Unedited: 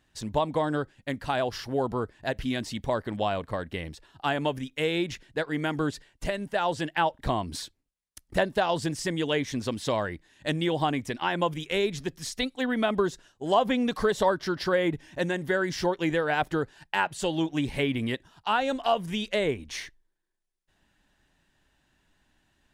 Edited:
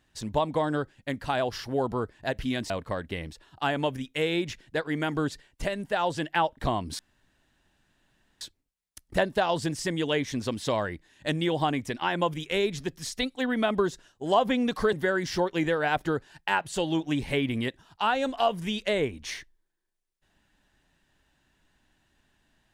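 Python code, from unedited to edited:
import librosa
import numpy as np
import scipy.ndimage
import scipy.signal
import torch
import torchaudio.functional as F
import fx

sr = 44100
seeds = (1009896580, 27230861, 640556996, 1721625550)

y = fx.edit(x, sr, fx.cut(start_s=2.7, length_s=0.62),
    fx.insert_room_tone(at_s=7.61, length_s=1.42),
    fx.cut(start_s=14.13, length_s=1.26), tone=tone)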